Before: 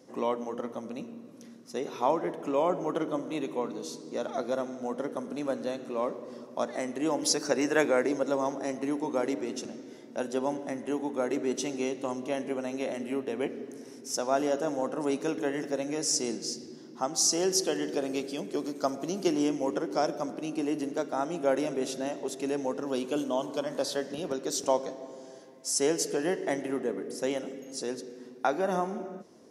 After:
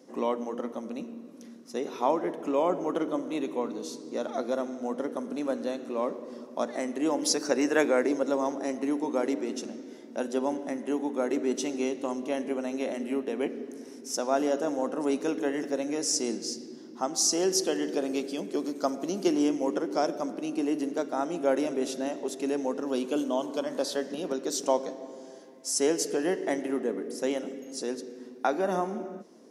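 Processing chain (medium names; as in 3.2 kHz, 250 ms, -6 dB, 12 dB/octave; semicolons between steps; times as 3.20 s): resonant low shelf 150 Hz -12 dB, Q 1.5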